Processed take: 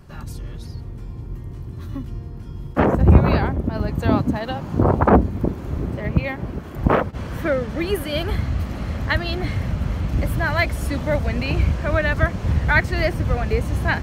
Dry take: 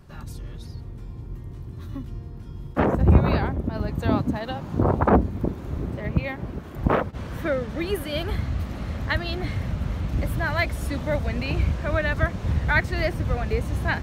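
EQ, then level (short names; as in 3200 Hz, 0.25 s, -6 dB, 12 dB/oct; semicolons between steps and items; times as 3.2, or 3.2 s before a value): notch 3700 Hz, Q 18; +4.0 dB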